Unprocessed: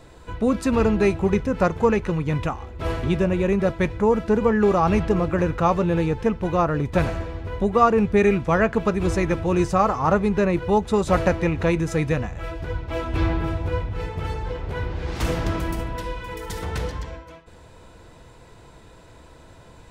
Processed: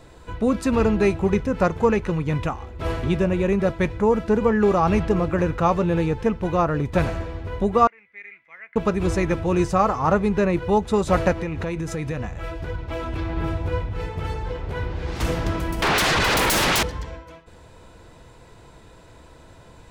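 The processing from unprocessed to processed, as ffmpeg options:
ffmpeg -i in.wav -filter_complex "[0:a]asettb=1/sr,asplit=3[link_01][link_02][link_03];[link_01]atrim=end=7.874[link_04];[link_02]atrim=start=7.87:end=8.76,asetpts=PTS-STARTPTS,afade=type=in:duration=0.004:curve=qsin,afade=type=out:start_time=0.886:duration=0.004:curve=qsin,bandpass=frequency=2100:width_type=q:width=19[link_05];[link_03]atrim=start=8.756[link_06];[link_04][link_05]acrossfade=duration=0.004:curve1=hsin:curve2=qsin[link_07];[link_07][link_06]acrossfade=duration=0.004:curve1=qsin:curve2=hsin,asplit=3[link_08][link_09][link_10];[link_08]afade=type=out:start_time=11.32:duration=0.02[link_11];[link_09]acompressor=threshold=-23dB:ratio=6:attack=3.2:release=140:knee=1:detection=peak,afade=type=in:start_time=11.32:duration=0.02,afade=type=out:start_time=13.36:duration=0.02[link_12];[link_10]afade=type=in:start_time=13.36:duration=0.02[link_13];[link_11][link_12][link_13]amix=inputs=3:normalize=0,asettb=1/sr,asplit=3[link_14][link_15][link_16];[link_14]atrim=end=15.824[link_17];[link_15]atrim=start=15.82:end=16.83,asetpts=PTS-STARTPTS,afade=type=in:duration=0.004:curve=qsin,afade=type=out:start_time=1.006:duration=0.004:curve=qsin,aeval=exprs='0.15*sin(PI/2*8.91*val(0)/0.15)':channel_layout=same[link_18];[link_16]atrim=start=16.826[link_19];[link_17][link_18]acrossfade=duration=0.004:curve1=hsin:curve2=qsin[link_20];[link_20][link_19]acrossfade=duration=0.004:curve1=qsin:curve2=hsin" out.wav

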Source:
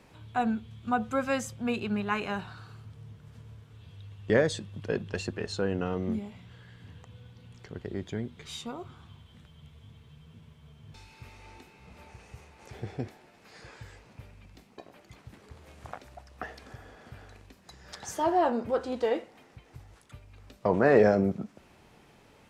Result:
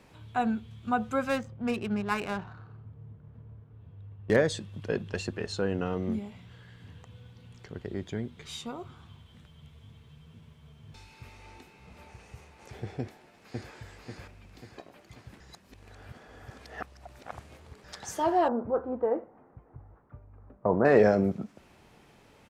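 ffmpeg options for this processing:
ffmpeg -i in.wav -filter_complex "[0:a]asettb=1/sr,asplit=3[link_01][link_02][link_03];[link_01]atrim=end=1.294[link_04];[link_02]atrim=start=1.29:end=4.36,asetpts=PTS-STARTPTS,afade=type=in:duration=0.004:curve=qsin,afade=type=out:start_time=3.066:duration=0.004:curve=qsin,adynamicsmooth=sensitivity=7.5:basefreq=1000[link_05];[link_03]atrim=start=4.356[link_06];[link_04][link_05]acrossfade=duration=0.004:curve1=hsin:curve2=qsin[link_07];[link_07][link_06]acrossfade=duration=0.004:curve1=qsin:curve2=hsin,asplit=2[link_08][link_09];[link_09]afade=type=in:start_time=13:duration=0.01,afade=type=out:start_time=13.73:duration=0.01,aecho=0:1:540|1080|1620|2160|2700|3240|3780:0.944061|0.47203|0.236015|0.118008|0.0590038|0.0295019|0.014751[link_10];[link_08][link_10]amix=inputs=2:normalize=0,asettb=1/sr,asplit=3[link_11][link_12][link_13];[link_11]atrim=end=18.484[link_14];[link_12]atrim=start=18.48:end=20.85,asetpts=PTS-STARTPTS,afade=type=in:duration=0.004:curve=qsin,afade=type=out:start_time=2.366:duration=0.004:curve=qsin,lowpass=frequency=1300:width=0.5412,lowpass=frequency=1300:width=1.3066[link_15];[link_13]atrim=start=20.846[link_16];[link_14][link_15]acrossfade=duration=0.004:curve1=hsin:curve2=qsin[link_17];[link_17][link_16]acrossfade=duration=0.004:curve1=qsin:curve2=hsin,asplit=3[link_18][link_19][link_20];[link_18]atrim=end=15.402[link_21];[link_19]atrim=start=15.398:end=17.842,asetpts=PTS-STARTPTS,areverse[link_22];[link_20]atrim=start=17.838[link_23];[link_21][link_22]acrossfade=duration=0.004:curve1=hsin:curve2=hsin[link_24];[link_24][link_23]acrossfade=duration=0.004:curve1=hsin:curve2=hsin" out.wav

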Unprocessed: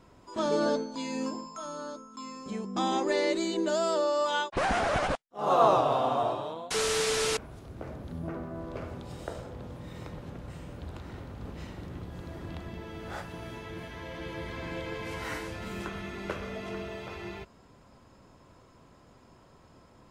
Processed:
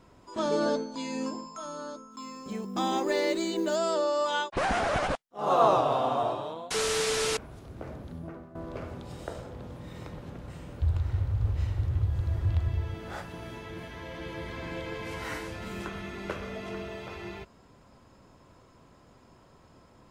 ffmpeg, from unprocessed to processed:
ffmpeg -i in.wav -filter_complex "[0:a]asettb=1/sr,asplit=3[link_01][link_02][link_03];[link_01]atrim=end=2.114[link_04];[link_02]atrim=start=2.11:end=3.76,asetpts=PTS-STARTPTS,afade=type=in:duration=0.004:curve=qsin,afade=type=out:start_time=1.646:duration=0.004:curve=qsin,acrusher=bits=8:mode=log:mix=0:aa=0.000001[link_05];[link_03]atrim=start=3.756[link_06];[link_04][link_05]acrossfade=duration=0.004:curve1=hsin:curve2=qsin[link_07];[link_07][link_06]acrossfade=duration=0.004:curve1=qsin:curve2=hsin,asettb=1/sr,asplit=3[link_08][link_09][link_10];[link_08]atrim=end=10.804[link_11];[link_09]atrim=start=10.8:end=12.94,asetpts=PTS-STARTPTS,afade=type=in:duration=0.004:curve=qsin,afade=type=out:start_time=2.136:duration=0.004:curve=qsin,lowshelf=frequency=140:width_type=q:width=3:gain=11.5[link_12];[link_10]atrim=start=12.936[link_13];[link_11][link_12]acrossfade=duration=0.004:curve1=hsin:curve2=qsin[link_14];[link_14][link_13]acrossfade=duration=0.004:curve1=qsin:curve2=hsin,asplit=2[link_15][link_16];[link_15]atrim=end=8.55,asetpts=PTS-STARTPTS,afade=type=out:start_time=7.96:duration=0.59:silence=0.237137[link_17];[link_16]atrim=start=8.55,asetpts=PTS-STARTPTS,afade=type=in:duration=0.004:curve=hsin:silence=0.237137[link_18];[link_17][link_18]concat=n=2:v=0:a=1" out.wav

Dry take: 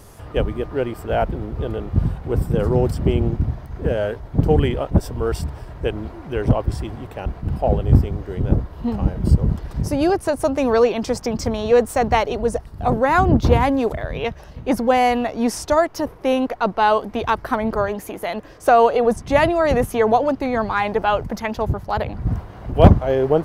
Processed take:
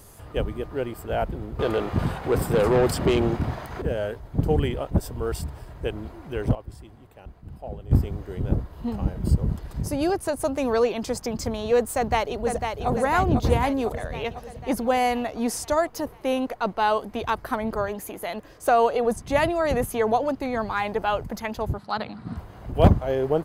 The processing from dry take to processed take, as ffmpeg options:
ffmpeg -i in.wav -filter_complex "[0:a]asettb=1/sr,asplit=3[link_01][link_02][link_03];[link_01]atrim=end=1.594[link_04];[link_02]atrim=start=1.59:end=3.82,asetpts=PTS-STARTPTS,afade=type=in:duration=0.004:curve=qsin,afade=type=out:start_time=2.226:duration=0.004:curve=qsin,asplit=2[link_05][link_06];[link_06]highpass=frequency=720:poles=1,volume=22dB,asoftclip=type=tanh:threshold=-4.5dB[link_07];[link_05][link_07]amix=inputs=2:normalize=0,lowpass=frequency=4100:poles=1,volume=-6dB[link_08];[link_03]atrim=start=3.816[link_09];[link_04][link_08]acrossfade=duration=0.004:curve1=hsin:curve2=qsin[link_10];[link_10][link_09]acrossfade=duration=0.004:curve1=qsin:curve2=hsin,asplit=2[link_11][link_12];[link_12]afade=type=in:start_time=11.96:duration=0.01,afade=type=out:start_time=12.89:duration=0.01,aecho=0:1:500|1000|1500|2000|2500|3000|3500|4000|4500|5000:0.530884|0.345075|0.224299|0.145794|0.0947662|0.061598|0.0400387|0.0260252|0.0169164|0.0109956[link_13];[link_11][link_13]amix=inputs=2:normalize=0,asettb=1/sr,asplit=3[link_14][link_15][link_16];[link_14]atrim=end=21.784[link_17];[link_15]atrim=start=21.78:end=22.37,asetpts=PTS-STARTPTS,afade=type=in:duration=0.004:curve=qsin,afade=type=out:start_time=0.586:duration=0.004:curve=qsin,highpass=200,equalizer=frequency=210:width_type=q:width=4:gain=8,equalizer=frequency=370:width_type=q:width=4:gain=-4,equalizer=frequency=550:width_type=q:width=4:gain=-6,equalizer=frequency=1300:width_type=q:width=4:gain=6,equalizer=frequency=4100:width_type=q:width=4:gain=10,equalizer=frequency=6600:width_type=q:width=4:gain=-10,lowpass=frequency=9200:width=0.5412,lowpass=frequency=9200:width=1.3066[link_18];[link_16]atrim=start=22.366[link_19];[link_17][link_18]acrossfade=duration=0.004:curve1=hsin:curve2=qsin[link_20];[link_20][link_19]acrossfade=duration=0.004:curve1=qsin:curve2=hsin,asplit=3[link_21][link_22][link_23];[link_21]atrim=end=6.552[link_24];[link_22]atrim=start=6.548:end=7.912,asetpts=PTS-STARTPTS,volume=-11.5dB[link_25];[link_23]atrim=start=7.908[link_26];[link_24][link_25]acrossfade=duration=0.004:curve1=hsin:curve2=hsin[link_27];[link_27][link_26]acrossfade=duration=0.004:curve1=hsin:curve2=hsin,highshelf=frequency=6000:gain=8.5,bandreject=frequency=5600:width=13,volume=-6dB" out.wav

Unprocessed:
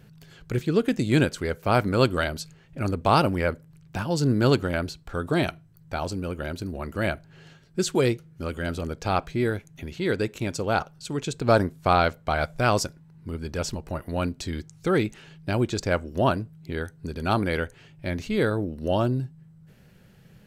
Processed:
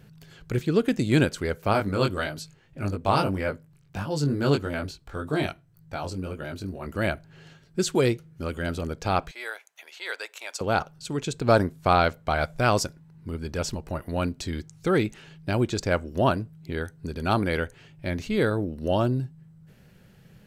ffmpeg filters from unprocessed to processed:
ffmpeg -i in.wav -filter_complex "[0:a]asplit=3[link_01][link_02][link_03];[link_01]afade=type=out:start_time=1.72:duration=0.02[link_04];[link_02]flanger=delay=19.5:depth=2.1:speed=1.7,afade=type=in:start_time=1.72:duration=0.02,afade=type=out:start_time=6.85:duration=0.02[link_05];[link_03]afade=type=in:start_time=6.85:duration=0.02[link_06];[link_04][link_05][link_06]amix=inputs=3:normalize=0,asettb=1/sr,asplit=3[link_07][link_08][link_09];[link_07]atrim=end=9.314[link_10];[link_08]atrim=start=9.31:end=10.61,asetpts=PTS-STARTPTS,afade=type=in:duration=0.004:curve=qsin,afade=type=out:start_time=1.296:duration=0.004:curve=qsin,highpass=frequency=690:width=0.5412,highpass=frequency=690:width=1.3066[link_11];[link_09]atrim=start=10.606[link_12];[link_10][link_11]acrossfade=duration=0.004:curve1=hsin:curve2=qsin[link_13];[link_13][link_12]acrossfade=duration=0.004:curve1=qsin:curve2=hsin" out.wav

